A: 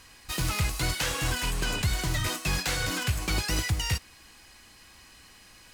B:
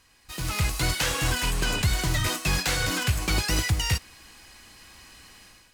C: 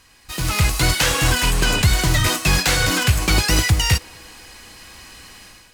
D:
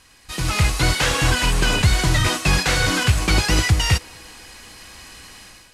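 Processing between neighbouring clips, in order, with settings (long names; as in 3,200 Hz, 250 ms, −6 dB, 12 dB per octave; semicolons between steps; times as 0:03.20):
automatic gain control gain up to 12 dB; level −8.5 dB
feedback echo with a band-pass in the loop 242 ms, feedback 76%, band-pass 570 Hz, level −23.5 dB; level +8 dB
variable-slope delta modulation 64 kbit/s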